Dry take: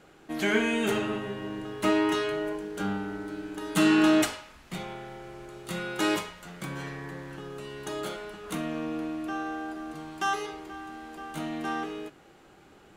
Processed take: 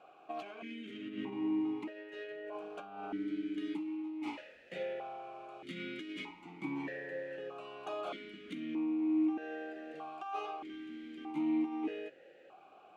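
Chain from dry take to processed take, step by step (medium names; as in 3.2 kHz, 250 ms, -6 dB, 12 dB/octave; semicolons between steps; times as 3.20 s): self-modulated delay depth 0.092 ms; peak limiter -22 dBFS, peak gain reduction 10.5 dB; compressor with a negative ratio -34 dBFS, ratio -0.5; stepped vowel filter 1.6 Hz; trim +6 dB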